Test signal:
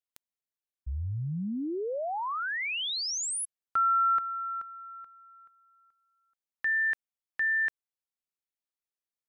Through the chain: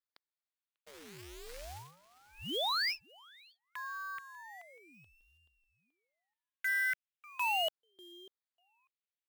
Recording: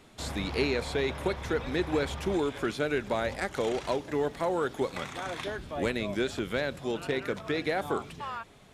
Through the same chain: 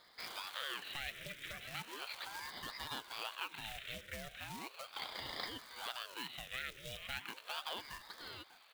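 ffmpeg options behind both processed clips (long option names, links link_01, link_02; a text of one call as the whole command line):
ffmpeg -i in.wav -filter_complex "[0:a]asuperstop=centerf=810:order=8:qfactor=0.6,aresample=8000,aresample=44100,asplit=2[link_01][link_02];[link_02]adelay=594,lowpass=frequency=1100:poles=1,volume=-18dB,asplit=2[link_03][link_04];[link_04]adelay=594,lowpass=frequency=1100:poles=1,volume=0.16[link_05];[link_01][link_03][link_05]amix=inputs=3:normalize=0,alimiter=level_in=4dB:limit=-24dB:level=0:latency=1:release=269,volume=-4dB,acrusher=bits=4:mode=log:mix=0:aa=0.000001,highpass=frequency=150:poles=1,tiltshelf=frequency=630:gain=-9,aeval=exprs='val(0)*sin(2*PI*820*n/s+820*0.75/0.37*sin(2*PI*0.37*n/s))':channel_layout=same,volume=-4.5dB" out.wav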